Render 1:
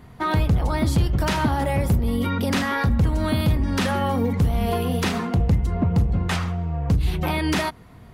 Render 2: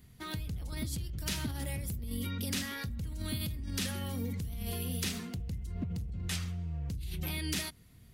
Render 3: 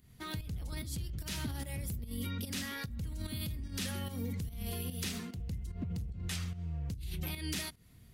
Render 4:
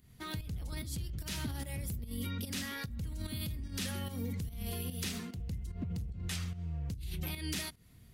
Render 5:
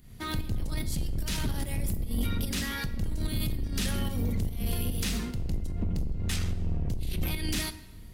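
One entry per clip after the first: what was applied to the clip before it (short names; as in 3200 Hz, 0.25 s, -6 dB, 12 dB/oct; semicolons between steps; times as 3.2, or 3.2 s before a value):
passive tone stack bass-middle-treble 10-0-1; in parallel at +2.5 dB: negative-ratio compressor -34 dBFS, ratio -0.5; on the sum: tilt +3 dB/oct
in parallel at +0.5 dB: limiter -28.5 dBFS, peak gain reduction 8.5 dB; on the sum: pump 147 bpm, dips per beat 1, -10 dB, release 0.174 s; gain -7 dB
nothing audible
octaver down 2 oct, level +2 dB; soft clip -29 dBFS, distortion -19 dB; reverb RT60 1.2 s, pre-delay 3 ms, DRR 11 dB; gain +7 dB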